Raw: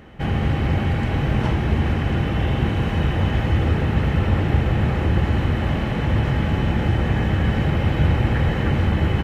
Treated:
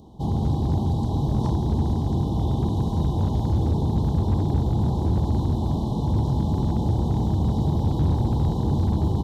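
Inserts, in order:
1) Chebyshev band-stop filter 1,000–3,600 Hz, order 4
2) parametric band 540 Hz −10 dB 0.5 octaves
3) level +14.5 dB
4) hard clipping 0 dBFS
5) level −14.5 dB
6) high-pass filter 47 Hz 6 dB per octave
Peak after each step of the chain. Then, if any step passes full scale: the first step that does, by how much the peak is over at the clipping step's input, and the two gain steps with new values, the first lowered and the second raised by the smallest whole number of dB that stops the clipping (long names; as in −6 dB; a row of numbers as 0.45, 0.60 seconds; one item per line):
−7.5, −8.0, +6.5, 0.0, −14.5, −11.5 dBFS
step 3, 6.5 dB
step 3 +7.5 dB, step 5 −7.5 dB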